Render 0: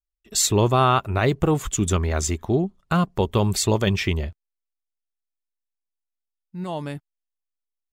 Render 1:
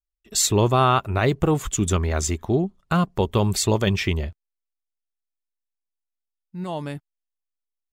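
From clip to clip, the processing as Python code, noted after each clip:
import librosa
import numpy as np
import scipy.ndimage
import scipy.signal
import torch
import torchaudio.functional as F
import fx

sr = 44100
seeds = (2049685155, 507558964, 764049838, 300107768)

y = x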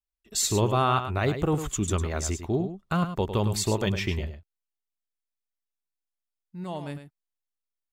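y = x + 10.0 ** (-9.5 / 20.0) * np.pad(x, (int(104 * sr / 1000.0), 0))[:len(x)]
y = F.gain(torch.from_numpy(y), -5.5).numpy()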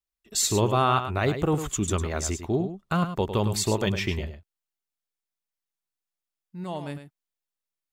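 y = fx.low_shelf(x, sr, hz=76.0, db=-5.5)
y = F.gain(torch.from_numpy(y), 1.5).numpy()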